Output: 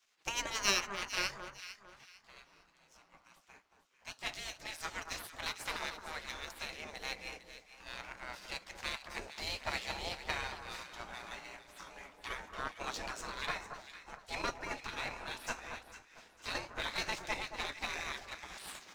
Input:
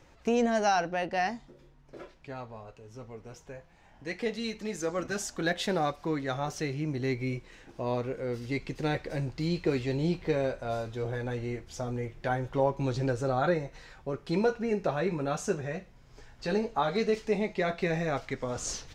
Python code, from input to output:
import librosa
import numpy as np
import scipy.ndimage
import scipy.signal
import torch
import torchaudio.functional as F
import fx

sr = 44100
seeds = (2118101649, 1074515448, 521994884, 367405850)

p1 = fx.diode_clip(x, sr, knee_db=-16.5)
p2 = fx.spec_gate(p1, sr, threshold_db=-20, keep='weak')
p3 = fx.power_curve(p2, sr, exponent=1.4)
p4 = p3 + fx.echo_alternate(p3, sr, ms=226, hz=1500.0, feedback_pct=54, wet_db=-7, dry=0)
y = p4 * librosa.db_to_amplitude(11.5)